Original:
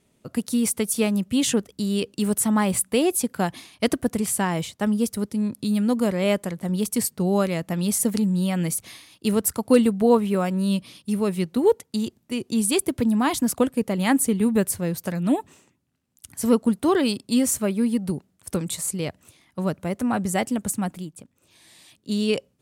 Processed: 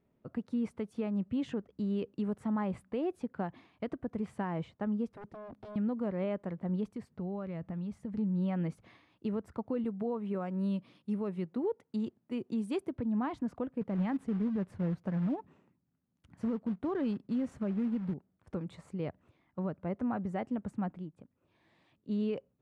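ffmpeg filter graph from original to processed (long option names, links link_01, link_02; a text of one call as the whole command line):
ffmpeg -i in.wav -filter_complex "[0:a]asettb=1/sr,asplit=3[link_01][link_02][link_03];[link_01]atrim=end=5.124[link_04];[link_02]atrim=start=5.12:end=5.76,asetpts=PTS-STARTPTS,afade=type=in:duration=0.004:curve=qsin,afade=type=out:start_time=0.636:duration=0.004:curve=qsin,acompressor=threshold=-25dB:ratio=4:attack=3.2:release=140:knee=1:detection=peak,aeval=exprs='0.0251*(abs(mod(val(0)/0.0251+3,4)-2)-1)':channel_layout=same[link_05];[link_03]atrim=start=5.756[link_06];[link_04][link_05]acrossfade=duration=0.004:curve1=hsin:curve2=qsin[link_07];[link_07][link_06]acrossfade=duration=0.004:curve1=qsin:curve2=hsin,asettb=1/sr,asplit=3[link_08][link_09][link_10];[link_08]atrim=end=6.894[link_11];[link_09]atrim=start=6.89:end=8.18,asetpts=PTS-STARTPTS,afade=type=in:duration=0.004:curve=qsin,afade=type=out:start_time=1.286:duration=0.004:curve=qsin,asubboost=boost=7.5:cutoff=180,acompressor=threshold=-26dB:ratio=10:attack=3.2:release=140:knee=1:detection=peak[link_12];[link_10]atrim=start=8.176[link_13];[link_11][link_12]acrossfade=duration=0.004:curve1=hsin:curve2=qsin[link_14];[link_14][link_13]acrossfade=duration=0.004:curve1=qsin:curve2=hsin,asettb=1/sr,asplit=3[link_15][link_16][link_17];[link_15]atrim=end=9.844[link_18];[link_16]atrim=start=9.84:end=12.93,asetpts=PTS-STARTPTS,afade=type=in:duration=0.004:curve=qsin,afade=type=out:start_time=3.086:duration=0.004:curve=qsin,highpass=120,highshelf=frequency=6700:gain=12[link_19];[link_17]atrim=start=12.926[link_20];[link_18][link_19]acrossfade=duration=0.004:curve1=hsin:curve2=qsin[link_21];[link_21][link_20]acrossfade=duration=0.004:curve1=qsin:curve2=hsin,asettb=1/sr,asplit=3[link_22][link_23][link_24];[link_22]atrim=end=13.814[link_25];[link_23]atrim=start=13.81:end=18.14,asetpts=PTS-STARTPTS,afade=type=in:duration=0.004:curve=qsin,afade=type=out:start_time=4.326:duration=0.004:curve=qsin,equalizer=frequency=180:width_type=o:width=0.78:gain=6.5,acrusher=bits=4:mode=log:mix=0:aa=0.000001[link_26];[link_24]atrim=start=18.136[link_27];[link_25][link_26]acrossfade=duration=0.004:curve1=hsin:curve2=qsin[link_28];[link_28][link_27]acrossfade=duration=0.004:curve1=qsin:curve2=hsin,lowpass=1500,alimiter=limit=-18dB:level=0:latency=1:release=206,volume=-8dB" out.wav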